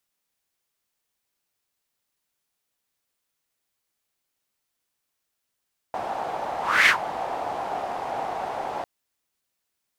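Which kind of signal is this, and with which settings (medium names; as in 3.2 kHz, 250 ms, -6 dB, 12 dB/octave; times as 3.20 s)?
whoosh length 2.90 s, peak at 0.94 s, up 0.31 s, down 0.11 s, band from 760 Hz, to 2.1 kHz, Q 4.3, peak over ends 14 dB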